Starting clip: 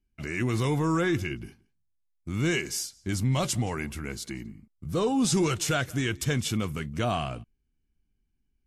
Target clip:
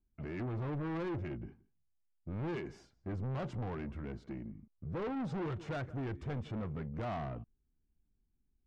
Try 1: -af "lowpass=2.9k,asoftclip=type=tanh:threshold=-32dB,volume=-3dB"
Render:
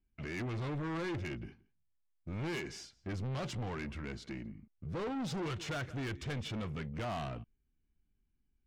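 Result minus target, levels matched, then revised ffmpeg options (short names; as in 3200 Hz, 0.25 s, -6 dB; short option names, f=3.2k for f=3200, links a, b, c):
4000 Hz band +10.5 dB
-af "lowpass=1.1k,asoftclip=type=tanh:threshold=-32dB,volume=-3dB"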